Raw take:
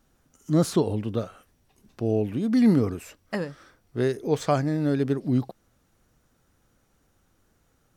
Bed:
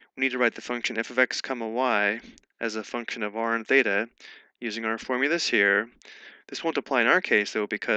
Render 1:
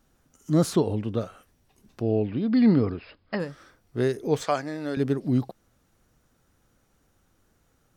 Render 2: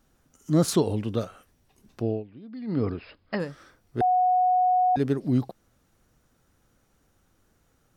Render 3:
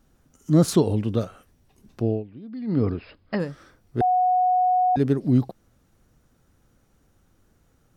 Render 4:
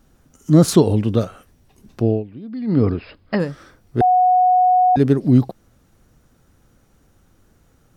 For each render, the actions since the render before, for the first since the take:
0:00.75–0:01.21: high-shelf EQ 9,100 Hz −11 dB; 0:02.02–0:03.40: linear-phase brick-wall low-pass 5,200 Hz; 0:04.44–0:04.97: meter weighting curve A
0:00.68–0:01.25: high-shelf EQ 3,800 Hz +8.5 dB; 0:02.04–0:02.87: duck −18 dB, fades 0.20 s; 0:04.01–0:04.96: beep over 733 Hz −18 dBFS
low-shelf EQ 420 Hz +5.5 dB
level +6 dB; brickwall limiter −2 dBFS, peak gain reduction 1 dB

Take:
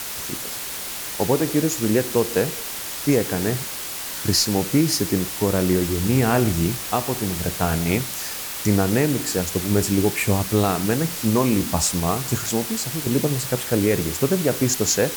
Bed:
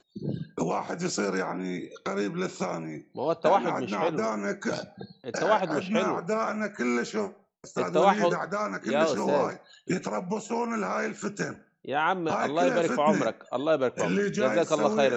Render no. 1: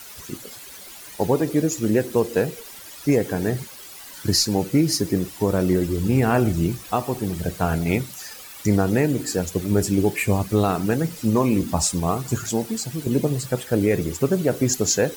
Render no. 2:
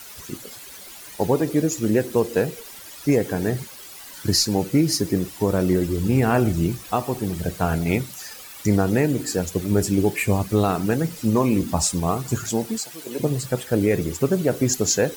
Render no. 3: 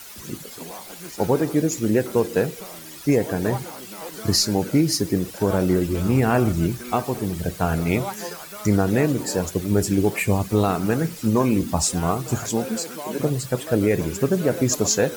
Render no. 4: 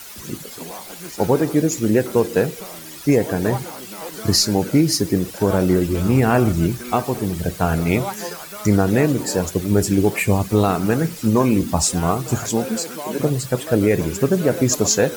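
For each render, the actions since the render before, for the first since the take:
broadband denoise 13 dB, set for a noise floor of −31 dBFS
0:12.78–0:13.20: high-pass filter 520 Hz
mix in bed −10 dB
level +3 dB

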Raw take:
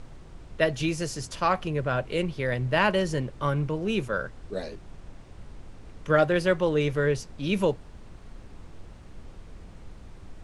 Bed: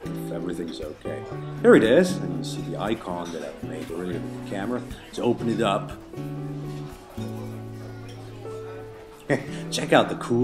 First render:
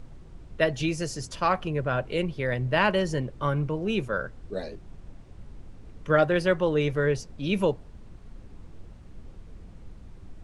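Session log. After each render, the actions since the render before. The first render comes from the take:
broadband denoise 6 dB, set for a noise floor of −47 dBFS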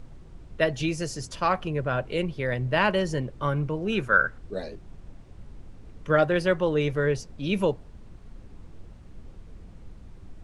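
0:03.92–0:04.38: parametric band 1,500 Hz +13 dB 0.67 octaves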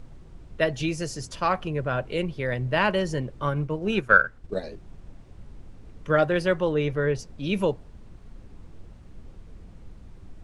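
0:03.46–0:04.64: transient designer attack +6 dB, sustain −6 dB
0:06.72–0:07.19: low-pass filter 3,900 Hz 6 dB per octave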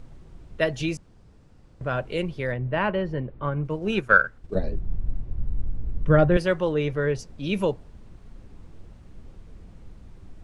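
0:00.97–0:01.81: fill with room tone
0:02.52–0:03.65: high-frequency loss of the air 420 metres
0:04.55–0:06.37: RIAA equalisation playback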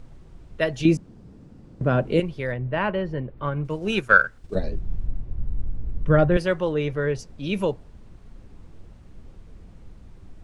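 0:00.85–0:02.20: parametric band 230 Hz +13 dB 2.3 octaves
0:03.37–0:05.07: high-shelf EQ 3,000 Hz +8.5 dB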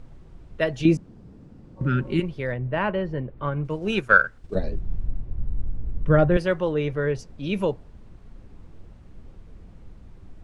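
0:01.79–0:02.21: healed spectral selection 420–1,200 Hz after
high-shelf EQ 4,400 Hz −5.5 dB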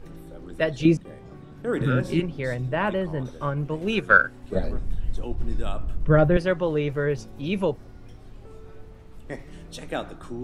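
mix in bed −12.5 dB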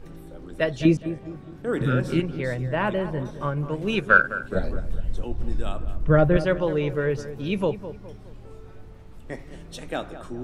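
feedback echo with a low-pass in the loop 208 ms, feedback 43%, low-pass 1,700 Hz, level −12 dB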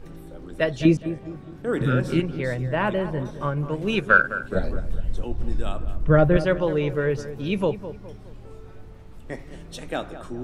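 level +1 dB
brickwall limiter −3 dBFS, peak gain reduction 1.5 dB

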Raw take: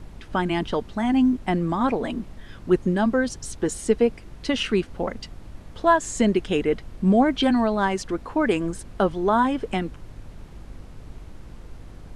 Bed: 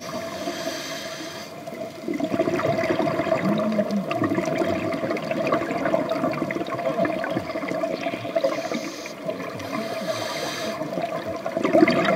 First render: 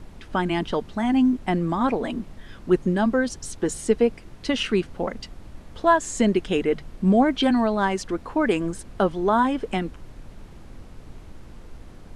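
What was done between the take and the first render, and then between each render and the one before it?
hum removal 50 Hz, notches 3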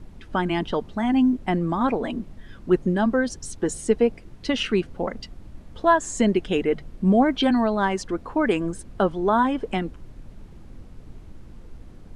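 broadband denoise 6 dB, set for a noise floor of −44 dBFS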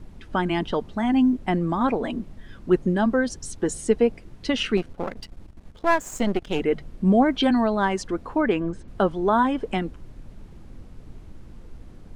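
0:04.77–0:06.60: gain on one half-wave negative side −12 dB
0:08.41–0:08.88: high-frequency loss of the air 150 metres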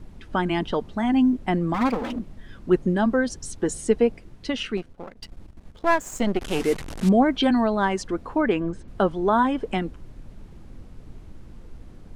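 0:01.74–0:02.19: lower of the sound and its delayed copy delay 3.9 ms
0:04.03–0:05.22: fade out, to −12.5 dB
0:06.41–0:07.09: linear delta modulator 64 kbit/s, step −28 dBFS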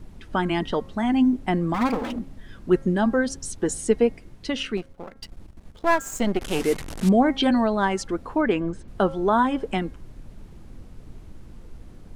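high-shelf EQ 7,900 Hz +5.5 dB
hum removal 270.1 Hz, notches 8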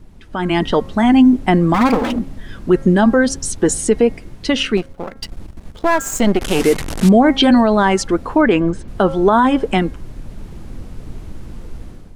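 brickwall limiter −14 dBFS, peak gain reduction 7 dB
automatic gain control gain up to 11.5 dB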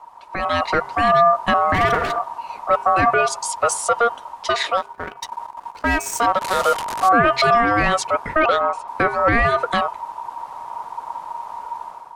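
soft clipping −5 dBFS, distortion −20 dB
ring modulation 940 Hz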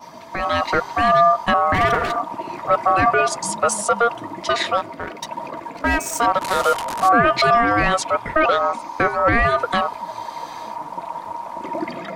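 mix in bed −11.5 dB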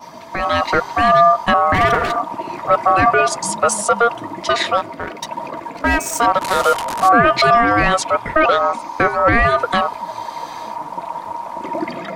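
level +3 dB

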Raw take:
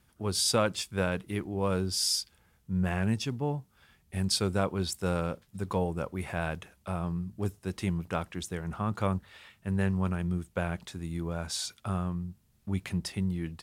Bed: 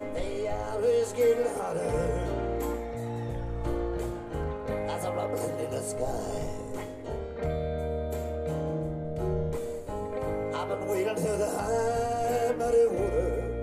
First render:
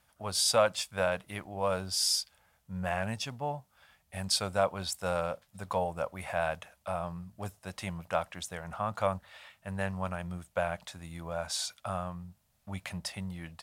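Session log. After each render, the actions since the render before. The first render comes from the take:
low shelf with overshoot 480 Hz −7.5 dB, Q 3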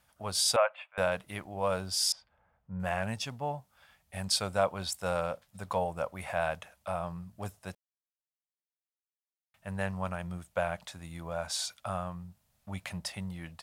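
0:00.56–0:00.98: elliptic band-pass filter 580–2,600 Hz
0:02.12–0:02.80: low-pass filter 1,300 Hz
0:07.75–0:09.54: silence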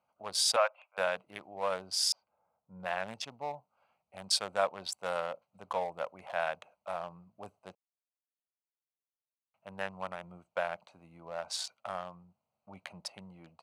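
adaptive Wiener filter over 25 samples
meter weighting curve A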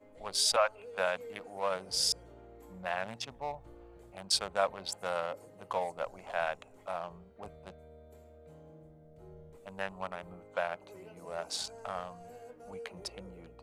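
mix in bed −23 dB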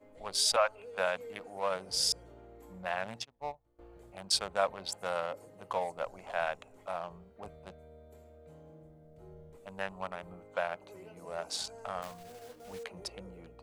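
0:03.23–0:03.79: expander for the loud parts 2.5 to 1, over −49 dBFS
0:12.02–0:12.85: one scale factor per block 3 bits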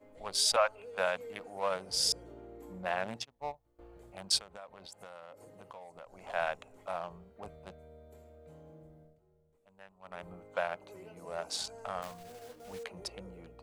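0:02.05–0:03.17: parametric band 320 Hz +6.5 dB 1.3 octaves
0:04.38–0:06.21: downward compressor 4 to 1, threshold −48 dBFS
0:09.01–0:10.22: duck −18 dB, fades 0.19 s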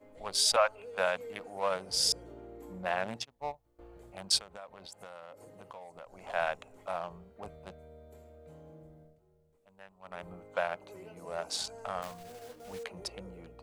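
level +1.5 dB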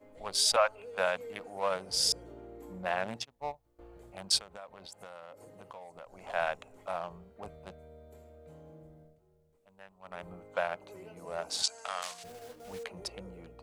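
0:11.63–0:12.24: meter weighting curve ITU-R 468

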